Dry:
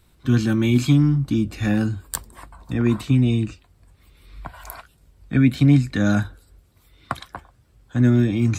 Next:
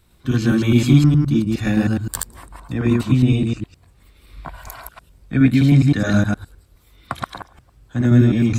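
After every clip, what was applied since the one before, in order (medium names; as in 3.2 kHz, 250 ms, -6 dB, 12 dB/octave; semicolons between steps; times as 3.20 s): chunks repeated in reverse 104 ms, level 0 dB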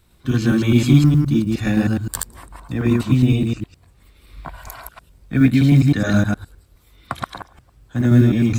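companded quantiser 8-bit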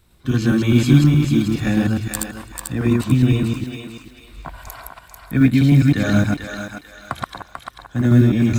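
thinning echo 442 ms, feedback 35%, high-pass 630 Hz, level -5 dB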